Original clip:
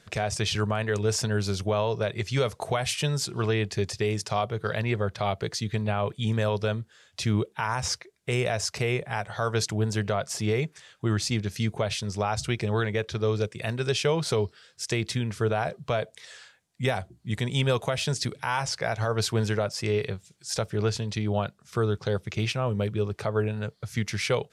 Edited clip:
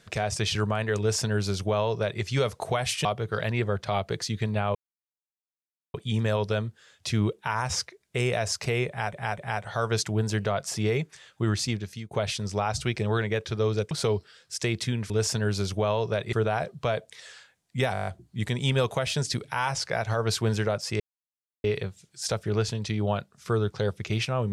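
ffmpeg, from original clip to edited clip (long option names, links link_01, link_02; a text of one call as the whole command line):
ffmpeg -i in.wav -filter_complex "[0:a]asplit=17[link_01][link_02][link_03][link_04][link_05][link_06][link_07][link_08][link_09][link_10][link_11][link_12][link_13][link_14][link_15][link_16][link_17];[link_01]atrim=end=3.052[link_18];[link_02]atrim=start=4.368:end=6.07,asetpts=PTS-STARTPTS,afade=type=out:start_time=1.698:duration=0.004:curve=hsin,apad=pad_dur=1.19[link_19];[link_03]atrim=start=6.07:end=9.262,asetpts=PTS-STARTPTS,afade=type=in:duration=0.004:curve=hsin[link_20];[link_04]atrim=start=9.008:end=9.262[link_21];[link_05]atrim=start=9.008:end=11.74,asetpts=PTS-STARTPTS,afade=type=out:start_time=2.242:duration=0.49:silence=0.1[link_22];[link_06]atrim=start=11.74:end=13.542,asetpts=PTS-STARTPTS,afade=type=in:duration=0.004:curve=hsin:silence=0.1[link_23];[link_07]atrim=start=14.188:end=15.382[link_24];[link_08]atrim=start=0.988:end=2.222[link_25];[link_09]atrim=start=15.378:end=17.002[link_26];[link_10]atrim=start=16.978:end=17.002[link_27];[link_11]atrim=start=16.978:end=17.002[link_28];[link_12]atrim=start=16.978:end=17.002[link_29];[link_13]atrim=start=16.978:end=17.002[link_30];[link_14]atrim=start=16.978:end=17.002[link_31];[link_15]atrim=start=16.978:end=17.002[link_32];[link_16]atrim=start=16.978:end=19.91,asetpts=PTS-STARTPTS,afade=type=out:start_time=2.928:duration=0.004:curve=hsin,apad=pad_dur=0.64[link_33];[link_17]atrim=start=19.91,asetpts=PTS-STARTPTS,afade=type=in:duration=0.004:curve=hsin[link_34];[link_19][link_20]concat=n=2:v=0:a=1[link_35];[link_18][link_35]acrossfade=duration=0.004:curve1=hsin:curve2=hsin[link_36];[link_36][link_21]acrossfade=duration=0.004:curve1=hsin:curve2=hsin[link_37];[link_22][link_23]concat=n=2:v=0:a=1[link_38];[link_37][link_38]acrossfade=duration=0.004:curve1=hsin:curve2=hsin[link_39];[link_39][link_24]acrossfade=duration=0.004:curve1=hsin:curve2=hsin[link_40];[link_40][link_25]acrossfade=duration=0.004:curve1=hsin:curve2=hsin[link_41];[link_41][link_26]acrossfade=duration=0.004:curve1=hsin:curve2=hsin[link_42];[link_42][link_27]acrossfade=duration=0.004:curve1=hsin:curve2=hsin[link_43];[link_43][link_28]acrossfade=duration=0.004:curve1=hsin:curve2=hsin[link_44];[link_44][link_29]acrossfade=duration=0.004:curve1=hsin:curve2=hsin[link_45];[link_45][link_30]acrossfade=duration=0.004:curve1=hsin:curve2=hsin[link_46];[link_46][link_31]acrossfade=duration=0.004:curve1=hsin:curve2=hsin[link_47];[link_47][link_32]acrossfade=duration=0.004:curve1=hsin:curve2=hsin[link_48];[link_33][link_34]concat=n=2:v=0:a=1[link_49];[link_48][link_49]acrossfade=duration=0.004:curve1=hsin:curve2=hsin" out.wav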